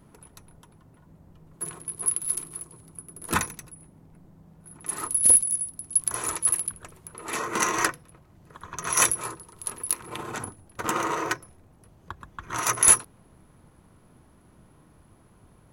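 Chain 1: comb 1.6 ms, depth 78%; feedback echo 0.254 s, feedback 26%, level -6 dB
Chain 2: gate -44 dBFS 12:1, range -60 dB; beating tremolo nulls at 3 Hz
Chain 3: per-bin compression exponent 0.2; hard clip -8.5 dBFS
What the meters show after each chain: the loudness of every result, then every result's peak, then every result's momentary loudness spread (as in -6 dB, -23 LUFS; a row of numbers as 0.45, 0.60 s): -22.5, -26.0, -15.0 LUFS; -1.0, -6.0, -8.5 dBFS; 21, 20, 8 LU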